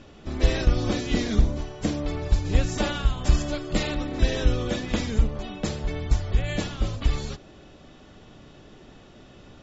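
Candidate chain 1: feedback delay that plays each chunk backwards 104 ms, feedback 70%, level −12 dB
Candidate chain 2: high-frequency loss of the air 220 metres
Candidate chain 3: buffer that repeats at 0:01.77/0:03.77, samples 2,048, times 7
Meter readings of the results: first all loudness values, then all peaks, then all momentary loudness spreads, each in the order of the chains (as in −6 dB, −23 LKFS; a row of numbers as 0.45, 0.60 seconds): −26.5, −27.0, −26.5 LKFS; −8.0, −8.5, −8.5 dBFS; 7, 7, 10 LU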